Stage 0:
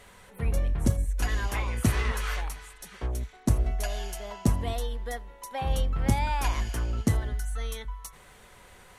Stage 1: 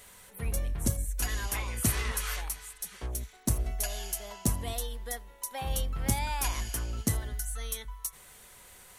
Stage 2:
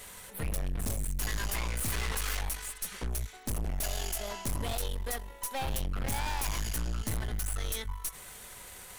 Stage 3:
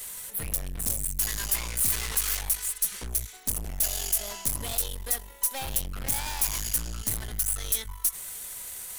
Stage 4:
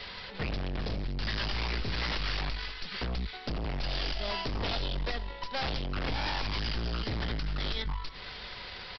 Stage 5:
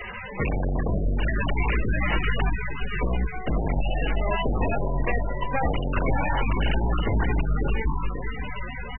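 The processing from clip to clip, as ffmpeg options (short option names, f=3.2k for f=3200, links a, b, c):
-af "aemphasis=mode=production:type=75kf,volume=-5.5dB"
-af "aeval=exprs='(tanh(100*val(0)+0.65)-tanh(0.65))/100':c=same,volume=9dB"
-af "crystalizer=i=3:c=0,volume=-2.5dB"
-filter_complex "[0:a]acrossover=split=320[a][b];[b]acompressor=threshold=-28dB:ratio=6[c];[a][c]amix=inputs=2:normalize=0,aresample=11025,aeval=exprs='0.02*(abs(mod(val(0)/0.02+3,4)-2)-1)':c=same,aresample=44100,aecho=1:1:469:0.0841,volume=8dB"
-filter_complex "[0:a]aresample=11025,aresample=44100,asplit=2[a][b];[b]adelay=541,lowpass=f=1.6k:p=1,volume=-7.5dB,asplit=2[c][d];[d]adelay=541,lowpass=f=1.6k:p=1,volume=0.54,asplit=2[e][f];[f]adelay=541,lowpass=f=1.6k:p=1,volume=0.54,asplit=2[g][h];[h]adelay=541,lowpass=f=1.6k:p=1,volume=0.54,asplit=2[i][j];[j]adelay=541,lowpass=f=1.6k:p=1,volume=0.54,asplit=2[k][l];[l]adelay=541,lowpass=f=1.6k:p=1,volume=0.54,asplit=2[m][n];[n]adelay=541,lowpass=f=1.6k:p=1,volume=0.54[o];[a][c][e][g][i][k][m][o]amix=inputs=8:normalize=0,volume=9dB" -ar 24000 -c:a libmp3lame -b:a 8k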